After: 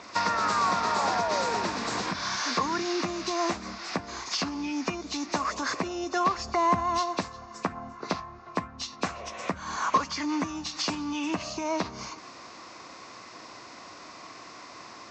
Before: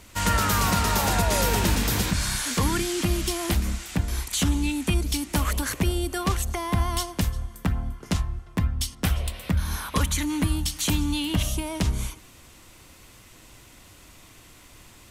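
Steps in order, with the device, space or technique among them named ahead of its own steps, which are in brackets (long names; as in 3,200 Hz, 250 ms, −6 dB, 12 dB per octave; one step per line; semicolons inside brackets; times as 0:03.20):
hearing aid with frequency lowering (hearing-aid frequency compression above 2,300 Hz 1.5 to 1; downward compressor 4 to 1, threshold −32 dBFS, peak gain reduction 12.5 dB; loudspeaker in its box 260–6,100 Hz, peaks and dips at 690 Hz +5 dB, 1,100 Hz +9 dB, 3,100 Hz −9 dB)
0:06.38–0:06.99: low-shelf EQ 200 Hz +9 dB
level +6.5 dB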